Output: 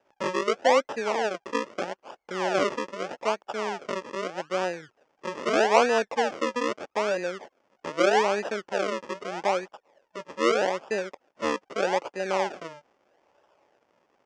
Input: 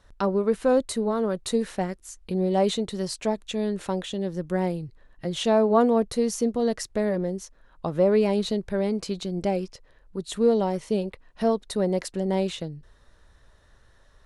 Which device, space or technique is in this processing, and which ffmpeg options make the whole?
circuit-bent sampling toy: -af "acrusher=samples=40:mix=1:aa=0.000001:lfo=1:lforange=40:lforate=0.8,highpass=440,equalizer=f=570:t=q:w=4:g=4,equalizer=f=840:t=q:w=4:g=5,equalizer=f=4000:t=q:w=4:g=-10,lowpass=f=6000:w=0.5412,lowpass=f=6000:w=1.3066"

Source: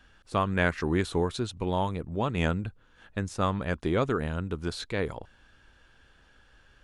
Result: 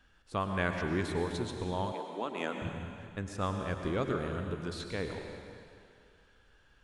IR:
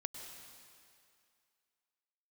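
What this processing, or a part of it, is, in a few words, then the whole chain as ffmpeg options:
stairwell: -filter_complex "[1:a]atrim=start_sample=2205[s0];[0:a][s0]afir=irnorm=-1:irlink=0,asettb=1/sr,asplit=3[s1][s2][s3];[s1]atrim=end=1.924[s4];[s2]atrim=start=1.92:end=2.62,asetpts=PTS-STARTPTS,afade=t=in:d=0.004:c=qsin,afade=t=out:st=0.696:d=0.004:c=qsin,highpass=f=250:w=0.5412,highpass=f=250:w=1.3066[s5];[s3]atrim=start=2.616[s6];[s4][s5]acrossfade=d=0.004:c1=hsin:c2=qsin[s7];[s7][s6]acrossfade=d=0.004:c1=qsin:c2=hsin,volume=0.668"

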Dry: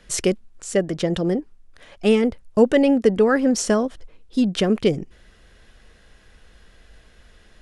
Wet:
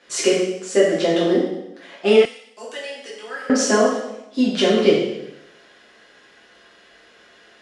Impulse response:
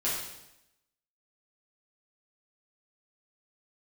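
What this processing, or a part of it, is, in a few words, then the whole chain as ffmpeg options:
supermarket ceiling speaker: -filter_complex "[0:a]highpass=320,lowpass=6600[s0];[1:a]atrim=start_sample=2205[s1];[s0][s1]afir=irnorm=-1:irlink=0,asettb=1/sr,asplit=3[s2][s3][s4];[s2]atrim=end=2.254[s5];[s3]atrim=start=2.25:end=3.5,asetpts=PTS-STARTPTS,afade=t=in:d=0.004:c=qsin,afade=t=out:st=1.246:d=0.004:c=qsin,aderivative[s6];[s4]atrim=start=3.496[s7];[s5][s6]acrossfade=d=0.004:c1=hsin:c2=qsin[s8];[s8][s7]acrossfade=d=0.004:c1=qsin:c2=hsin,volume=0.891"

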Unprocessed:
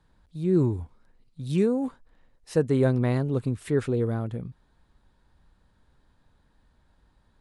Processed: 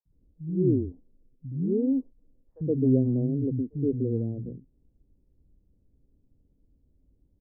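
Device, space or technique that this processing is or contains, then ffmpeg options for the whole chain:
under water: -filter_complex "[0:a]lowpass=f=460:w=0.5412,lowpass=f=460:w=1.3066,equalizer=f=270:t=o:w=0.32:g=7,asettb=1/sr,asplit=3[s0][s1][s2];[s0]atrim=end=3.144[s3];[s1]atrim=start=3.14:end=4.09,asetpts=PTS-STARTPTS,afade=t=in:d=0.004:c=qsin,afade=t=out:st=0.946:d=0.004:c=qsin,equalizer=f=1400:t=o:w=0.95:g=-13.5[s4];[s2]atrim=start=4.086[s5];[s3][s4]acrossfade=d=0.004:c1=hsin:c2=qsin[s6];[s6][s5]acrossfade=d=0.004:c1=qsin:c2=hsin,acrossover=split=210|920[s7][s8][s9];[s7]adelay=50[s10];[s8]adelay=120[s11];[s10][s11][s9]amix=inputs=3:normalize=0,volume=0.891"

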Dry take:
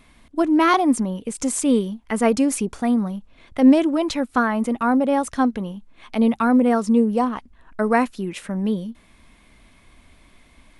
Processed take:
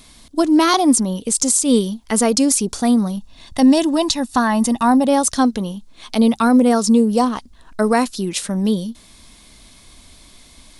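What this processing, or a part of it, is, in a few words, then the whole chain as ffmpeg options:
over-bright horn tweeter: -filter_complex "[0:a]asettb=1/sr,asplit=3[s0][s1][s2];[s0]atrim=end=3.174[s3];[s1]atrim=start=3.17:end=5.08,asetpts=PTS-STARTPTS,afade=t=in:d=0.004:c=qsin,afade=t=out:st=1.906:d=0.004:c=qsin,aecho=1:1:1.1:0.48,atrim=end_sample=84231[s4];[s2]atrim=start=5.076[s5];[s3][s4]acrossfade=d=0.004:c1=hsin:c2=qsin[s6];[s6][s5]acrossfade=d=0.004:c1=qsin:c2=hsin,highshelf=f=3200:t=q:w=1.5:g=10.5,alimiter=limit=0.335:level=0:latency=1:release=165,volume=1.68"

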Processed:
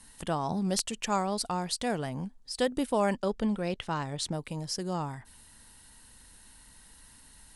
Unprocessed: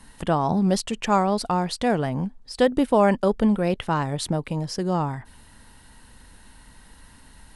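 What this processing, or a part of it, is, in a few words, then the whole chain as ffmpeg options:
overflowing digital effects unit: -filter_complex "[0:a]aemphasis=mode=production:type=75fm,aeval=exprs='(mod(1.58*val(0)+1,2)-1)/1.58':c=same,lowpass=9400,asettb=1/sr,asplit=3[s0][s1][s2];[s0]atrim=end=3.174[s3];[s1]atrim=start=3.17:end=4.33,asetpts=PTS-STARTPTS,afade=t=in:d=0.004:c=qsin,afade=t=out:st=1.156:d=0.004:c=qsin,lowpass=6900[s4];[s2]atrim=start=4.326[s5];[s3][s4]acrossfade=d=0.004:c1=hsin:c2=qsin[s6];[s6][s5]acrossfade=d=0.004:c1=qsin:c2=hsin,volume=0.376"

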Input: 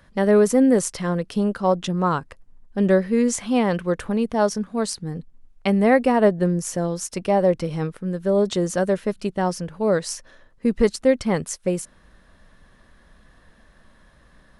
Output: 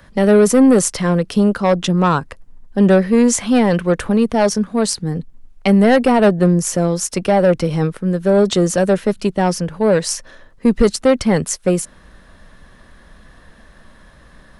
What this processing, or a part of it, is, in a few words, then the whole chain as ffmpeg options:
one-band saturation: -filter_complex "[0:a]acrossover=split=200|3500[s0][s1][s2];[s1]asoftclip=type=tanh:threshold=0.15[s3];[s0][s3][s2]amix=inputs=3:normalize=0,volume=2.66"

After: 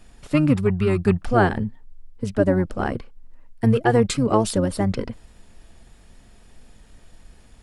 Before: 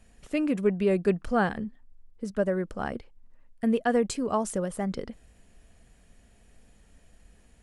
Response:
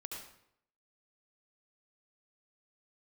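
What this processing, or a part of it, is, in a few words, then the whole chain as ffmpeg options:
octave pedal: -filter_complex "[0:a]asplit=3[s0][s1][s2];[s0]afade=t=out:st=0.53:d=0.02[s3];[s1]equalizer=f=570:t=o:w=0.61:g=-12.5,afade=t=in:st=0.53:d=0.02,afade=t=out:st=1.28:d=0.02[s4];[s2]afade=t=in:st=1.28:d=0.02[s5];[s3][s4][s5]amix=inputs=3:normalize=0,asplit=2[s6][s7];[s7]asetrate=22050,aresample=44100,atempo=2,volume=0.794[s8];[s6][s8]amix=inputs=2:normalize=0,volume=2"

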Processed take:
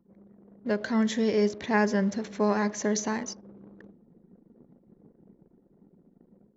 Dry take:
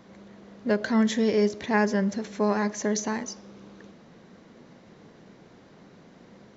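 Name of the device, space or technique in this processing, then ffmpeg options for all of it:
voice memo with heavy noise removal: -af "anlmdn=0.0398,dynaudnorm=f=500:g=5:m=1.5,volume=0.631"

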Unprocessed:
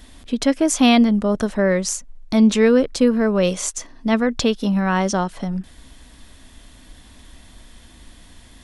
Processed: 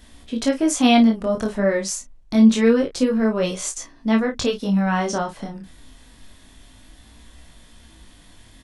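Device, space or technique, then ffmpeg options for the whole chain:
double-tracked vocal: -filter_complex "[0:a]asplit=2[s0][s1];[s1]adelay=31,volume=0.422[s2];[s0][s2]amix=inputs=2:normalize=0,flanger=delay=17.5:depth=6.9:speed=0.27"

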